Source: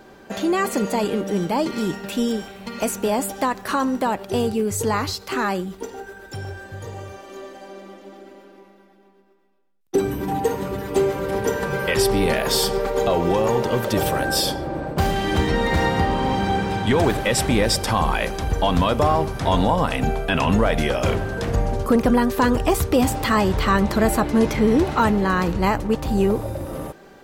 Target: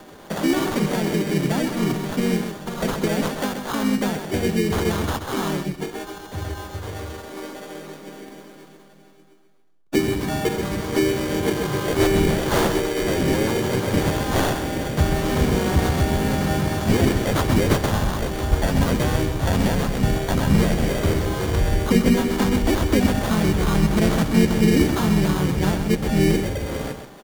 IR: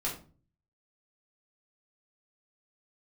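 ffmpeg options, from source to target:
-filter_complex "[0:a]bandreject=f=60:t=h:w=6,bandreject=f=120:t=h:w=6,bandreject=f=180:t=h:w=6,bandreject=f=240:t=h:w=6,bandreject=f=300:t=h:w=6,bandreject=f=360:t=h:w=6,bandreject=f=420:t=h:w=6,bandreject=f=480:t=h:w=6,asplit=2[a][b];[b]adelay=145.8,volume=-25dB,highshelf=f=4k:g=-3.28[c];[a][c]amix=inputs=2:normalize=0,acrossover=split=410|3000[d][e][f];[e]acompressor=threshold=-30dB:ratio=10[g];[d][g][f]amix=inputs=3:normalize=0,acrossover=split=160[h][i];[i]acrusher=samples=17:mix=1:aa=0.000001[j];[h][j]amix=inputs=2:normalize=0,asplit=2[k][l];[l]asetrate=35002,aresample=44100,atempo=1.25992,volume=-1dB[m];[k][m]amix=inputs=2:normalize=0,asplit=2[n][o];[o]aecho=0:1:130:0.398[p];[n][p]amix=inputs=2:normalize=0"

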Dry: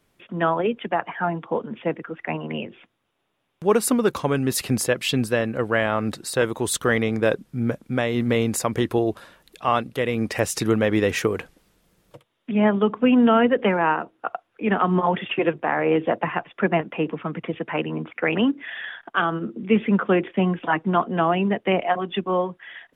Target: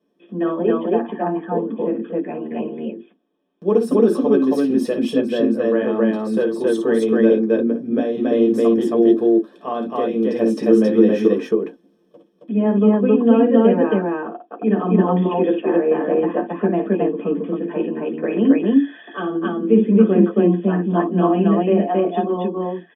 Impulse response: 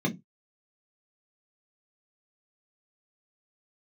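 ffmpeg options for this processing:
-filter_complex "[0:a]asettb=1/sr,asplit=3[a][b][c];[a]atrim=end=21.004[d];[b]atrim=start=21:end=21.67,asetpts=PTS-STARTPTS,afade=t=in:d=0.004:c=qsin,afade=t=out:st=0.666:d=0.004:c=qsin,highshelf=f=3.7k:t=q:w=3:g=-7.5[e];[c]atrim=start=21.666[f];[d][e]acrossfade=d=0.004:c1=hsin:c2=qsin[g];[g][f]acrossfade=d=0.004:c1=qsin:c2=hsin,aecho=1:1:55.39|271.1:0.398|1[h];[1:a]atrim=start_sample=2205,asetrate=66150,aresample=44100[i];[h][i]afir=irnorm=-1:irlink=0,volume=-14dB"

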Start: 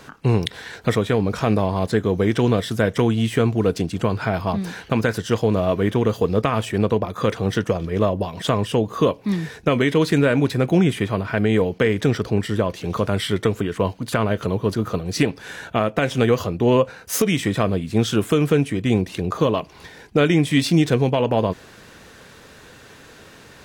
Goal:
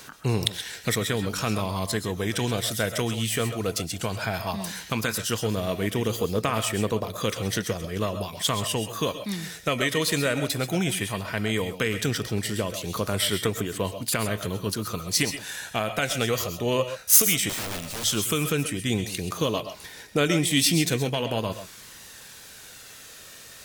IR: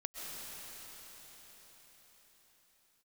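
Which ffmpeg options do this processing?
-filter_complex "[0:a]aphaser=in_gain=1:out_gain=1:delay=1.7:decay=0.25:speed=0.15:type=triangular,crystalizer=i=6.5:c=0,asettb=1/sr,asplit=3[a][b][c];[a]atrim=end=17.494[d];[b]atrim=start=17.49:end=18.04,asetpts=PTS-STARTPTS,afade=t=in:d=0.004:c=qsin,afade=t=out:st=0.546:d=0.004:c=qsin,aeval=exprs='(mod(7.5*val(0)+1,2)-1)/7.5':c=same[e];[c]atrim=start=18.036[f];[d][e]acrossfade=d=0.004:c1=hsin:c2=qsin[g];[g][f]acrossfade=d=0.004:c1=qsin:c2=hsin[h];[1:a]atrim=start_sample=2205,atrim=end_sample=6174[i];[h][i]afir=irnorm=-1:irlink=0,volume=-5.5dB"

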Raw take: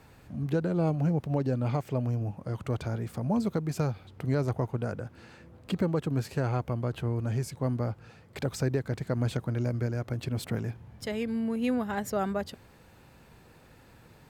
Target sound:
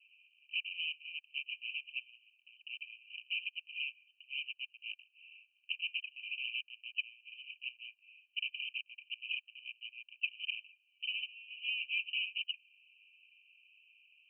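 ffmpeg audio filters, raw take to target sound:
-filter_complex "[0:a]asplit=2[a][b];[b]acompressor=threshold=-42dB:ratio=6,volume=2dB[c];[a][c]amix=inputs=2:normalize=0,aeval=exprs='0.0237*(abs(mod(val(0)/0.0237+3,4)-2)-1)':c=same,aemphasis=mode=production:type=bsi,agate=range=-14dB:threshold=-37dB:ratio=16:detection=peak,asuperpass=centerf=2700:order=20:qfactor=3.8,volume=11.5dB"

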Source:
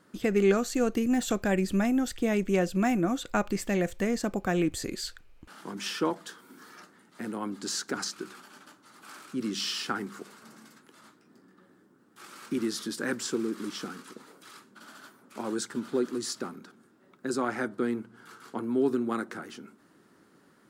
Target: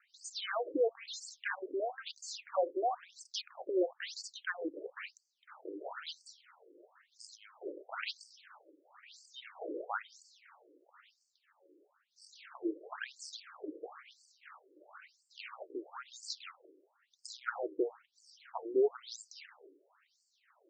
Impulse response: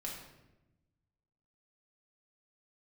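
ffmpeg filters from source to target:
-af "acrusher=samples=9:mix=1:aa=0.000001:lfo=1:lforange=9:lforate=2.8,afftfilt=real='re*between(b*sr/1024,390*pow(6300/390,0.5+0.5*sin(2*PI*1*pts/sr))/1.41,390*pow(6300/390,0.5+0.5*sin(2*PI*1*pts/sr))*1.41)':imag='im*between(b*sr/1024,390*pow(6300/390,0.5+0.5*sin(2*PI*1*pts/sr))/1.41,390*pow(6300/390,0.5+0.5*sin(2*PI*1*pts/sr))*1.41)':win_size=1024:overlap=0.75"

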